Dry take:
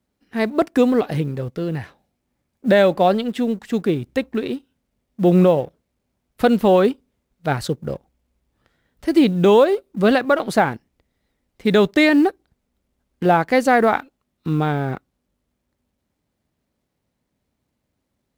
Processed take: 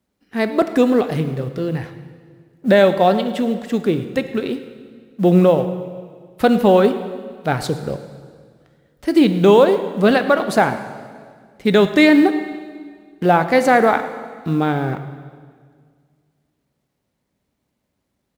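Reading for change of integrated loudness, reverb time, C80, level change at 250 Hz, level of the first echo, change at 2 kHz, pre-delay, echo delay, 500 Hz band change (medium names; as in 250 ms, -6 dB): +1.5 dB, 1.9 s, 11.5 dB, +2.0 dB, -19.5 dB, +2.0 dB, 5 ms, 108 ms, +2.0 dB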